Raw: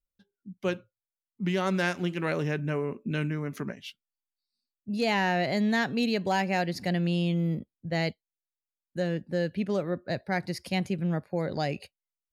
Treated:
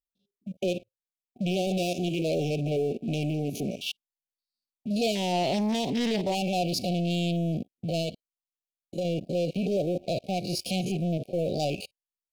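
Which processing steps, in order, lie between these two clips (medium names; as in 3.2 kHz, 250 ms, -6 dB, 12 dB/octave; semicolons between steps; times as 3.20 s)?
spectrogram pixelated in time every 50 ms; waveshaping leveller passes 3; peak limiter -20 dBFS, peak gain reduction 4 dB; brick-wall FIR band-stop 770–2200 Hz; bass shelf 270 Hz -9 dB; 8.01–9.05 s: compression, threshold -28 dBFS, peak gain reduction 3.5 dB; peaking EQ 2.2 kHz -8.5 dB 0.22 oct; 5.15–6.35 s: loudspeaker Doppler distortion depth 0.3 ms; trim +1.5 dB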